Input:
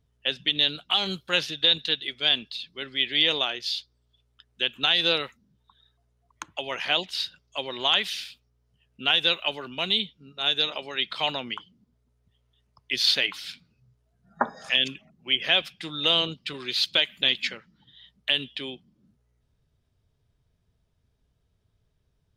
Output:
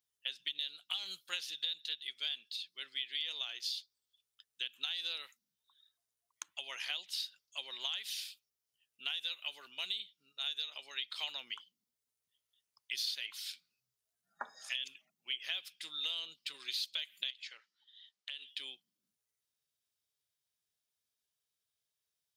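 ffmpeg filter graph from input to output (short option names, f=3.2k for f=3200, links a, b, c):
-filter_complex "[0:a]asettb=1/sr,asplit=3[a][b][c];[a]atrim=end=17.304[d];[b]atrim=start=17.3:end=18.48,asetpts=PTS-STARTPTS,afade=t=in:d=0.004:c=qsin,afade=t=out:st=1.176:d=0.004:c=qsin,acompressor=threshold=-33dB:ratio=4:attack=3.2:release=140:knee=1:detection=peak,highpass=430,lowpass=6.8k[e];[c]atrim=start=18.476[f];[d][e]acrossfade=d=0.004:c1=hsin:c2=qsin[g];[g][f]acrossfade=d=0.004:c1=qsin:c2=hsin,aderivative,acompressor=threshold=-35dB:ratio=6"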